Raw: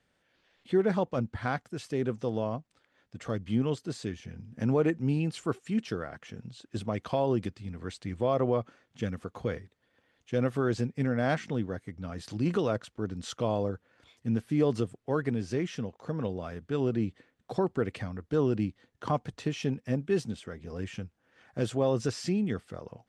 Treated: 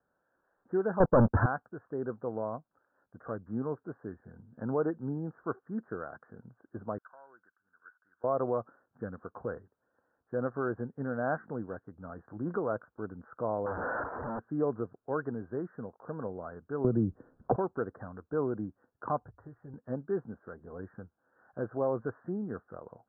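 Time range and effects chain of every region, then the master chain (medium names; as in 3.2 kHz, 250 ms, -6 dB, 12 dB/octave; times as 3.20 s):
1.00–1.46 s: high-pass 50 Hz + waveshaping leveller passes 5 + tilt EQ -2.5 dB/octave
6.98–8.24 s: CVSD coder 64 kbps + band-pass filter 1.5 kHz, Q 9.5
13.66–14.39 s: one-bit comparator + peaking EQ 720 Hz +6 dB 1.6 oct + power-law waveshaper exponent 0.7
16.84–17.56 s: tilt EQ -4 dB/octave + three bands compressed up and down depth 100%
19.20–19.74 s: resonant low shelf 130 Hz +13.5 dB, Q 1.5 + compression 2:1, threshold -44 dBFS + comb of notches 220 Hz
whole clip: steep low-pass 1.6 kHz 96 dB/octave; bass shelf 290 Hz -11.5 dB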